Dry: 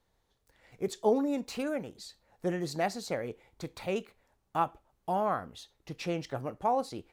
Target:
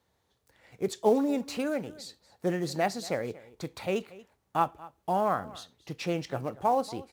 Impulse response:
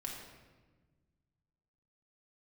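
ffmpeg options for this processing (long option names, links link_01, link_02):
-filter_complex "[0:a]highpass=frequency=62:width=0.5412,highpass=frequency=62:width=1.3066,asplit=2[link_01][link_02];[link_02]acrusher=bits=4:mode=log:mix=0:aa=0.000001,volume=-9dB[link_03];[link_01][link_03]amix=inputs=2:normalize=0,aecho=1:1:233:0.1"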